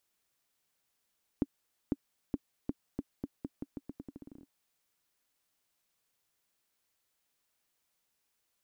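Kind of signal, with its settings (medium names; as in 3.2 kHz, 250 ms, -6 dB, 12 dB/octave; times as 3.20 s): bouncing ball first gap 0.50 s, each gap 0.84, 279 Hz, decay 40 ms -17 dBFS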